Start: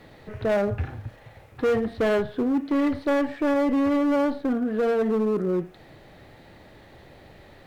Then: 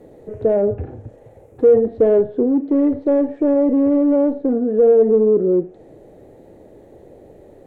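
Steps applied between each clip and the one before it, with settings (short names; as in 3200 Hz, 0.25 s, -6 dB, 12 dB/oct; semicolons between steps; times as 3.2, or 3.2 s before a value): treble ducked by the level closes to 2700 Hz, closed at -22 dBFS; EQ curve 150 Hz 0 dB, 460 Hz +12 dB, 1200 Hz -10 dB, 4700 Hz -15 dB, 6900 Hz 0 dB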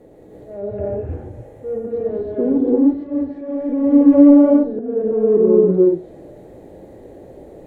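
auto swell 0.491 s; non-linear reverb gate 0.36 s rising, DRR -5.5 dB; gain -2.5 dB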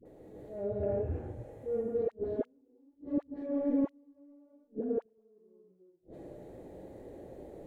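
flipped gate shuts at -12 dBFS, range -41 dB; dispersion highs, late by 56 ms, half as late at 680 Hz; gain -8.5 dB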